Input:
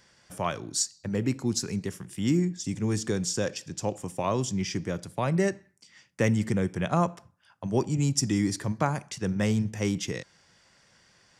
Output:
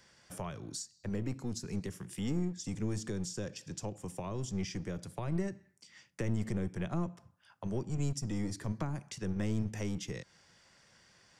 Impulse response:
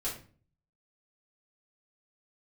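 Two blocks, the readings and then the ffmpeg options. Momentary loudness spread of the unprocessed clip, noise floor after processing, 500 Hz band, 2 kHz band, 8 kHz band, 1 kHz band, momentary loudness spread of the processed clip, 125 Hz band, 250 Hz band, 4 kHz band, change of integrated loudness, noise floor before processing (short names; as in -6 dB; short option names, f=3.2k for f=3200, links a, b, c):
7 LU, -67 dBFS, -11.0 dB, -12.0 dB, -12.0 dB, -14.0 dB, 8 LU, -7.0 dB, -8.5 dB, -11.5 dB, -9.0 dB, -63 dBFS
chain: -filter_complex "[0:a]acrossover=split=230[a][b];[a]aeval=exprs='clip(val(0),-1,0.00944)':c=same[c];[b]acompressor=threshold=-38dB:ratio=6[d];[c][d]amix=inputs=2:normalize=0,volume=-2.5dB"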